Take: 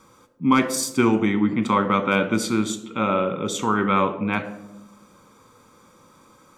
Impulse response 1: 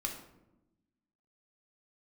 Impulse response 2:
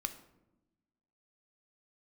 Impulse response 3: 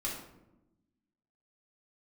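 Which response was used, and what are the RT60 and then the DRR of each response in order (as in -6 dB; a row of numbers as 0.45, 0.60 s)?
2; 0.95, 1.0, 0.95 s; 1.0, 8.0, -5.0 dB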